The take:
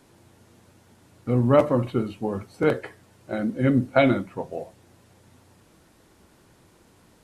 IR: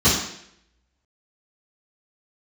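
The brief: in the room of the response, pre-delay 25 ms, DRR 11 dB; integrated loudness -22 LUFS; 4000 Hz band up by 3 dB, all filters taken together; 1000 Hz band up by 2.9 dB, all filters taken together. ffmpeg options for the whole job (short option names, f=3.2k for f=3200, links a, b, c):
-filter_complex "[0:a]equalizer=f=1k:t=o:g=4,equalizer=f=4k:t=o:g=3.5,asplit=2[a][b];[1:a]atrim=start_sample=2205,adelay=25[c];[b][c]afir=irnorm=-1:irlink=0,volume=-31dB[d];[a][d]amix=inputs=2:normalize=0,volume=-0.5dB"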